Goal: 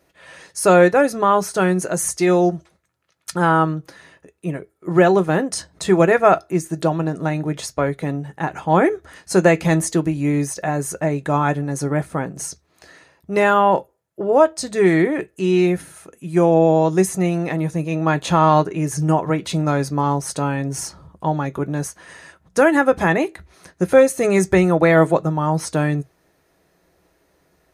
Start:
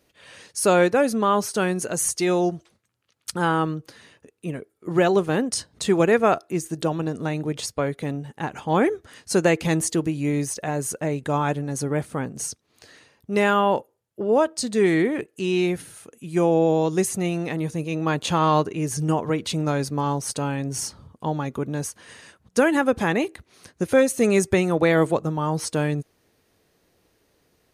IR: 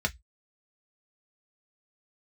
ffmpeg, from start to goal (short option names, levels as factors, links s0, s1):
-filter_complex "[0:a]asplit=2[s0][s1];[1:a]atrim=start_sample=2205,lowshelf=f=110:g=-10[s2];[s1][s2]afir=irnorm=-1:irlink=0,volume=0.266[s3];[s0][s3]amix=inputs=2:normalize=0,volume=1.41"